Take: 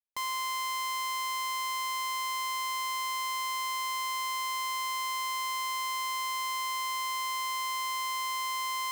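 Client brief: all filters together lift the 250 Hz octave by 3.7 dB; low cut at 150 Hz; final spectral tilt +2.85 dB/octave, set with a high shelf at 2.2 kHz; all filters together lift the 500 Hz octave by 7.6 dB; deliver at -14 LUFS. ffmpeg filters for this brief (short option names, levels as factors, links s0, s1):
-af "highpass=150,equalizer=f=250:t=o:g=4,equalizer=f=500:t=o:g=8.5,highshelf=f=2200:g=8,volume=4.22"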